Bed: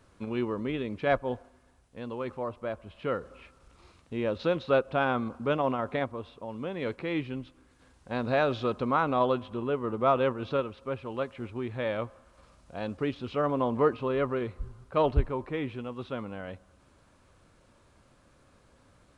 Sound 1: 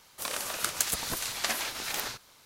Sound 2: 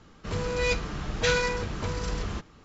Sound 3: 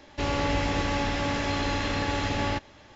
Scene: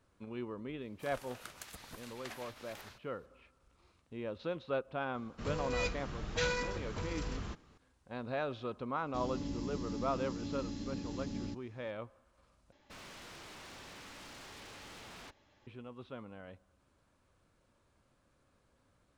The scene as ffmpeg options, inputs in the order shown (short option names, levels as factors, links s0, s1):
-filter_complex "[3:a]asplit=2[s0][s1];[0:a]volume=0.282[s2];[1:a]bass=f=250:g=4,treble=f=4000:g=-8[s3];[s0]firequalizer=gain_entry='entry(130,0);entry(190,12);entry(520,-8);entry(1000,-14);entry(2400,-14);entry(4800,2)':delay=0.05:min_phase=1[s4];[s1]aeval=exprs='0.0316*(abs(mod(val(0)/0.0316+3,4)-2)-1)':c=same[s5];[s2]asplit=2[s6][s7];[s6]atrim=end=12.724[s8];[s5]atrim=end=2.95,asetpts=PTS-STARTPTS,volume=0.15[s9];[s7]atrim=start=15.666[s10];[s3]atrim=end=2.45,asetpts=PTS-STARTPTS,volume=0.168,afade=t=in:d=0.004:c=hsin,afade=t=out:st=2.446:d=0.004:c=hsin,adelay=810[s11];[2:a]atrim=end=2.64,asetpts=PTS-STARTPTS,volume=0.355,afade=t=in:d=0.004:c=hsin,afade=t=out:st=2.636:d=0.004:c=hsin,adelay=5140[s12];[s4]atrim=end=2.95,asetpts=PTS-STARTPTS,volume=0.178,afade=t=in:d=0.004:c=hsin,afade=t=out:st=2.946:d=0.004:c=hsin,adelay=8960[s13];[s8][s9]acrossfade=d=0.004:c1=hsin:c2=hsin[s14];[s14][s10]acrossfade=d=0.004:c1=hsin:c2=hsin[s15];[s15][s11][s12][s13]amix=inputs=4:normalize=0"